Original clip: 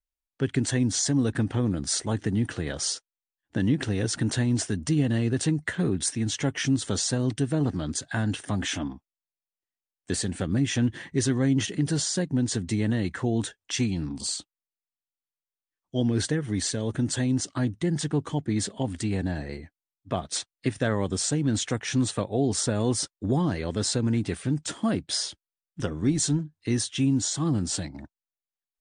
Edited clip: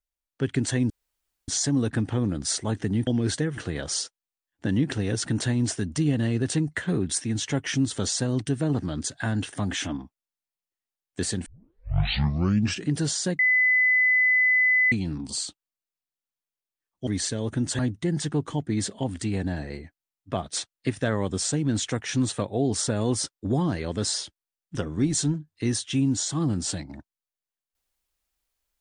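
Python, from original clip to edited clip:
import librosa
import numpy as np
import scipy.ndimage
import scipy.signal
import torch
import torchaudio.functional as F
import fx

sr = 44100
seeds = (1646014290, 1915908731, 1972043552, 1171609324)

y = fx.edit(x, sr, fx.insert_room_tone(at_s=0.9, length_s=0.58),
    fx.tape_start(start_s=10.37, length_s=1.43),
    fx.bleep(start_s=12.3, length_s=1.53, hz=2010.0, db=-17.0),
    fx.move(start_s=15.98, length_s=0.51, to_s=2.49),
    fx.cut(start_s=17.21, length_s=0.37),
    fx.cut(start_s=23.93, length_s=1.26), tone=tone)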